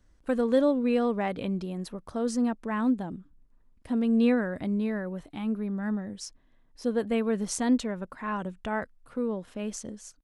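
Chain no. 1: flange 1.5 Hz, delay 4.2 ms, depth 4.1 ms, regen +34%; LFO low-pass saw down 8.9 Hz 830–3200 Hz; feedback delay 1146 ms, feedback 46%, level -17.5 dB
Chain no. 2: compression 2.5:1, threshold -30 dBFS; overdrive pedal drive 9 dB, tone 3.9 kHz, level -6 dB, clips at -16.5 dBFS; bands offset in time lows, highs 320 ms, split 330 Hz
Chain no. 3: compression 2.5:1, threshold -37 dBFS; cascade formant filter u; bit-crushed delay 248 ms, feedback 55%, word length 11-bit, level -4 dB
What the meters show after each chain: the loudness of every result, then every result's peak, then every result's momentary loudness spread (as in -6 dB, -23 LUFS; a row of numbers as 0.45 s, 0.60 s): -31.5 LUFS, -36.0 LUFS, -45.0 LUFS; -14.5 dBFS, -19.5 dBFS, -30.5 dBFS; 17 LU, 8 LU, 11 LU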